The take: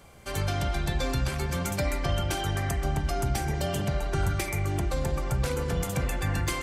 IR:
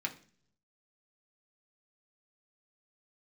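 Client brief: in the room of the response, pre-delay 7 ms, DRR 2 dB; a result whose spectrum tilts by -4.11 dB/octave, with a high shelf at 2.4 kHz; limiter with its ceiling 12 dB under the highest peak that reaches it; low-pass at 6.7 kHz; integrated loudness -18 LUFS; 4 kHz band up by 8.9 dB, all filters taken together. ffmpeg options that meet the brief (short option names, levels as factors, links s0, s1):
-filter_complex "[0:a]lowpass=6700,highshelf=f=2400:g=5.5,equalizer=f=4000:t=o:g=7,alimiter=limit=0.0631:level=0:latency=1,asplit=2[s0][s1];[1:a]atrim=start_sample=2205,adelay=7[s2];[s1][s2]afir=irnorm=-1:irlink=0,volume=0.562[s3];[s0][s3]amix=inputs=2:normalize=0,volume=4.73"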